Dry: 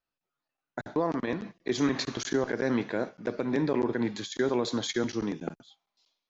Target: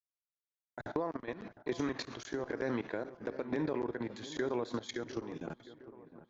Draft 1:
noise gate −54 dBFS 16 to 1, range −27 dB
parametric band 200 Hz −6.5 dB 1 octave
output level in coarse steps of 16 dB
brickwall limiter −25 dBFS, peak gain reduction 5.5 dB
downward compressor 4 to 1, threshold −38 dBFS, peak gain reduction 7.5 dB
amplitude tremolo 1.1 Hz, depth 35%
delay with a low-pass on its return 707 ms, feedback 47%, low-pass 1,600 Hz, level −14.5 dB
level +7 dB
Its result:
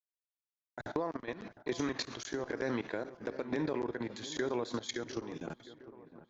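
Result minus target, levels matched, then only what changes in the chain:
8,000 Hz band +5.5 dB
add after downward compressor: high-shelf EQ 3,300 Hz −7.5 dB

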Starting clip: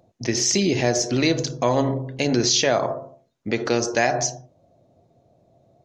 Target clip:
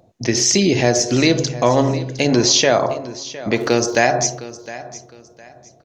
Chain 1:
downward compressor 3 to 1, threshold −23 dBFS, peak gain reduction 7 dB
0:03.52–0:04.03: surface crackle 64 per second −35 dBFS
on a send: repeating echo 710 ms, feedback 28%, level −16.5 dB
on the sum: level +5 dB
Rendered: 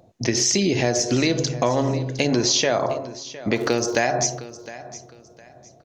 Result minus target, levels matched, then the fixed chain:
downward compressor: peak gain reduction +7 dB
0:03.52–0:04.03: surface crackle 64 per second −35 dBFS
on a send: repeating echo 710 ms, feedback 28%, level −16.5 dB
on the sum: level +5 dB

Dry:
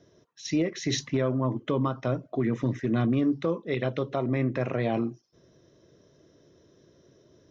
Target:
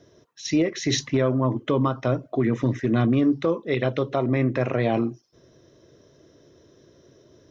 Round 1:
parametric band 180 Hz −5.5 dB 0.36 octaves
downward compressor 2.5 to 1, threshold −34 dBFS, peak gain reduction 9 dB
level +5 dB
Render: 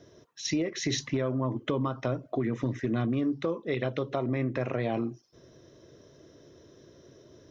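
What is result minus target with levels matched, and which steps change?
downward compressor: peak gain reduction +9 dB
remove: downward compressor 2.5 to 1, threshold −34 dBFS, peak gain reduction 9 dB

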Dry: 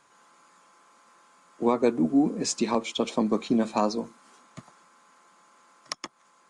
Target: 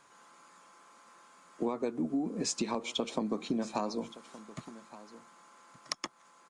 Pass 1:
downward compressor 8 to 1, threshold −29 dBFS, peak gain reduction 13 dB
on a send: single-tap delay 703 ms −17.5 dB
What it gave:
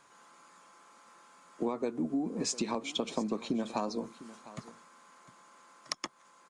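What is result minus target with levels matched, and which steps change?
echo 466 ms early
change: single-tap delay 1,169 ms −17.5 dB

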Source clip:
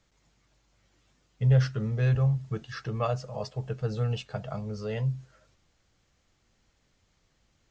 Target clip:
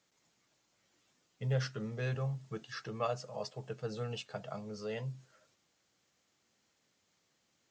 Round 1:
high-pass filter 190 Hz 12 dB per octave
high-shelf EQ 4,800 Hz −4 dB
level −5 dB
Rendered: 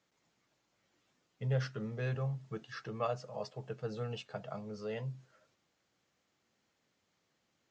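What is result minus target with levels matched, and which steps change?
8,000 Hz band −6.0 dB
change: high-shelf EQ 4,800 Hz +6 dB

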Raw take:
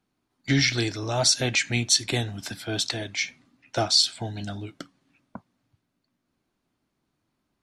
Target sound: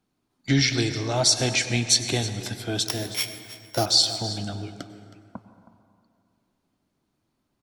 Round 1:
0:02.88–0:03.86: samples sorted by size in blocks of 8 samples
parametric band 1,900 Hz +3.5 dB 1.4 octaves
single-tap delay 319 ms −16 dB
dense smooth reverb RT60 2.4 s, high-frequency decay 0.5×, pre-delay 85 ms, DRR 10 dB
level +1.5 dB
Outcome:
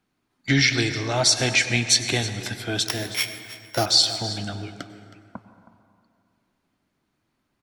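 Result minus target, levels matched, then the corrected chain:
2,000 Hz band +4.5 dB
0:02.88–0:03.86: samples sorted by size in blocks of 8 samples
parametric band 1,900 Hz −3.5 dB 1.4 octaves
single-tap delay 319 ms −16 dB
dense smooth reverb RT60 2.4 s, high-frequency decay 0.5×, pre-delay 85 ms, DRR 10 dB
level +1.5 dB

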